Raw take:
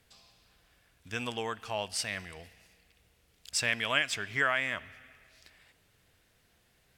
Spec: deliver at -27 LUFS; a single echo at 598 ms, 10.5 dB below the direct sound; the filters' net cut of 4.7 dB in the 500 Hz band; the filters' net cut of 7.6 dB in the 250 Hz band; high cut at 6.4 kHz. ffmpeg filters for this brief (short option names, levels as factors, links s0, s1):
-af "lowpass=6400,equalizer=f=250:t=o:g=-8,equalizer=f=500:t=o:g=-4.5,aecho=1:1:598:0.299,volume=2"